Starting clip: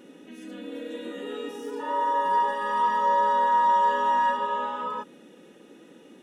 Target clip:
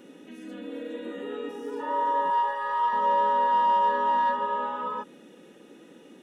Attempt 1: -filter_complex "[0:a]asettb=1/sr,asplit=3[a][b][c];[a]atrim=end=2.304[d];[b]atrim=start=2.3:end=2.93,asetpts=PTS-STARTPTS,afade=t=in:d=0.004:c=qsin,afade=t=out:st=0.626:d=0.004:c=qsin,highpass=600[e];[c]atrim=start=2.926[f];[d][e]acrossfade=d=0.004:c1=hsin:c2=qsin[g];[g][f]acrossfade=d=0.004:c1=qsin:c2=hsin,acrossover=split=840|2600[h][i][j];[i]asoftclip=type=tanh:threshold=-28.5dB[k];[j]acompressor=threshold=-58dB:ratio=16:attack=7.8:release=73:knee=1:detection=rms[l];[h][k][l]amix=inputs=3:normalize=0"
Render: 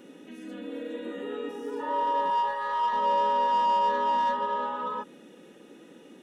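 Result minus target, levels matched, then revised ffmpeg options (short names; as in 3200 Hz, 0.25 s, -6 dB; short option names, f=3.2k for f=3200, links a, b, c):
soft clip: distortion +8 dB
-filter_complex "[0:a]asettb=1/sr,asplit=3[a][b][c];[a]atrim=end=2.304[d];[b]atrim=start=2.3:end=2.93,asetpts=PTS-STARTPTS,afade=t=in:d=0.004:c=qsin,afade=t=out:st=0.626:d=0.004:c=qsin,highpass=600[e];[c]atrim=start=2.926[f];[d][e]acrossfade=d=0.004:c1=hsin:c2=qsin[g];[g][f]acrossfade=d=0.004:c1=qsin:c2=hsin,acrossover=split=840|2600[h][i][j];[i]asoftclip=type=tanh:threshold=-22dB[k];[j]acompressor=threshold=-58dB:ratio=16:attack=7.8:release=73:knee=1:detection=rms[l];[h][k][l]amix=inputs=3:normalize=0"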